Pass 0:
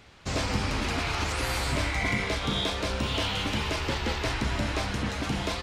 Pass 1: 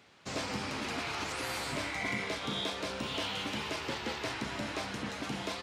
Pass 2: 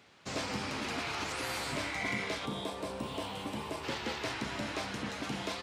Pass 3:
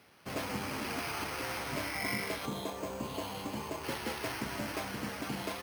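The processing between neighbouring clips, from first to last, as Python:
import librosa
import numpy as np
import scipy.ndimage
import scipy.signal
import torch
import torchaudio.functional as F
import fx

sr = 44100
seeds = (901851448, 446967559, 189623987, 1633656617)

y1 = scipy.signal.sosfilt(scipy.signal.butter(2, 160.0, 'highpass', fs=sr, output='sos'), x)
y1 = F.gain(torch.from_numpy(y1), -6.0).numpy()
y2 = fx.spec_box(y1, sr, start_s=2.46, length_s=1.38, low_hz=1200.0, high_hz=7400.0, gain_db=-8)
y3 = np.repeat(scipy.signal.resample_poly(y2, 1, 6), 6)[:len(y2)]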